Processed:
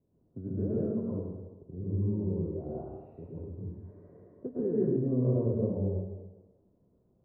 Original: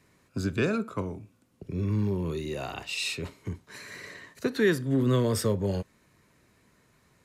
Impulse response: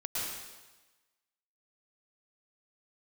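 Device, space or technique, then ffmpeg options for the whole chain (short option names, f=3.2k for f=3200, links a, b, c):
next room: -filter_complex "[0:a]lowpass=f=630:w=0.5412,lowpass=f=630:w=1.3066[a];[1:a]atrim=start_sample=2205[b];[a][b]afir=irnorm=-1:irlink=0,volume=-6.5dB"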